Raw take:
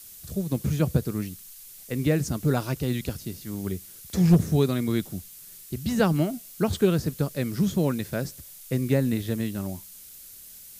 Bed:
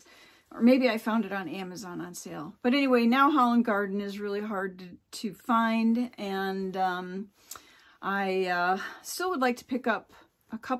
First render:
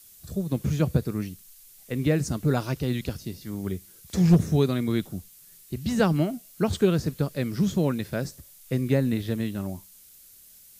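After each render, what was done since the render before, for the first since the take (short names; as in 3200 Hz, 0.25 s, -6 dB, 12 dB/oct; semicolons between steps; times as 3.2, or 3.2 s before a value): noise print and reduce 6 dB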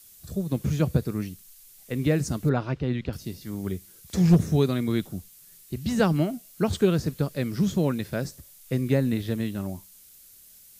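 2.49–3.13 LPF 2700 Hz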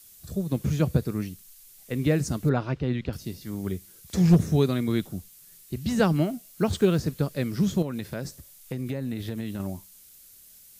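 6.25–7.06 block floating point 7-bit; 7.82–9.6 compressor 5:1, threshold -27 dBFS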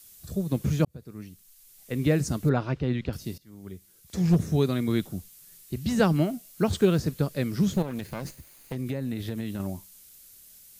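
0.85–2.04 fade in; 3.38–4.92 fade in, from -19 dB; 7.73–8.76 minimum comb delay 0.46 ms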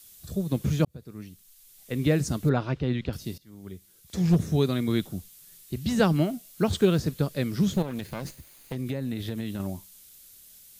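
bell 3500 Hz +3.5 dB 0.49 oct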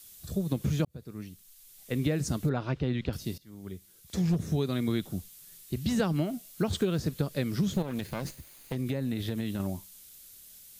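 compressor 6:1, threshold -24 dBFS, peak gain reduction 9 dB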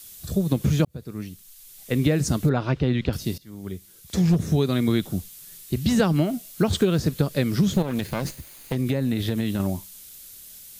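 gain +7.5 dB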